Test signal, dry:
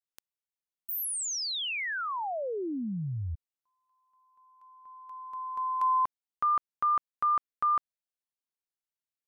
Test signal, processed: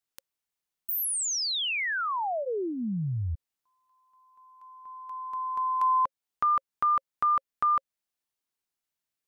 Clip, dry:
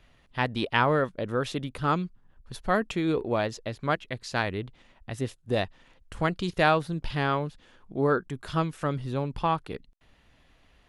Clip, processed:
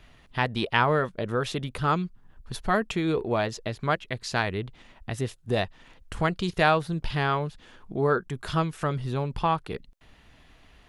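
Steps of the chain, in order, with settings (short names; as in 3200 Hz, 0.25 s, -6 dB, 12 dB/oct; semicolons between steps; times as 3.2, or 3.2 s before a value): notch 540 Hz, Q 12; dynamic EQ 280 Hz, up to -6 dB, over -48 dBFS, Q 4.6; in parallel at -0.5 dB: compressor, threshold -37 dBFS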